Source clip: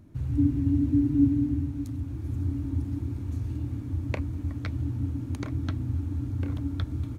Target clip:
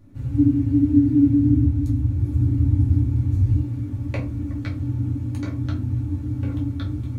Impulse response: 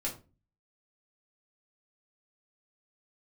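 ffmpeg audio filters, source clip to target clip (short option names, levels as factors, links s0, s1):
-filter_complex "[0:a]asettb=1/sr,asplit=3[s0][s1][s2];[s0]atrim=end=1.394[s3];[s1]atrim=start=1.39:end=3.52,asetpts=PTS-STARTPTS,afade=t=in:d=0.004:c=qsin,afade=t=out:st=2.126:d=0.004:c=qsin,equalizer=f=62:w=0.53:g=10.5[s4];[s2]atrim=start=3.516[s5];[s3][s4]acrossfade=d=0.004:c1=hsin:c2=qsin[s6];[s6][s5]acrossfade=d=0.004:c1=qsin:c2=hsin[s7];[1:a]atrim=start_sample=2205[s8];[s7][s8]afir=irnorm=-1:irlink=0"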